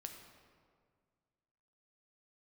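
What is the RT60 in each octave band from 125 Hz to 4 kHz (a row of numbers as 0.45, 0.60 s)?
2.3, 2.1, 2.0, 1.8, 1.5, 1.1 s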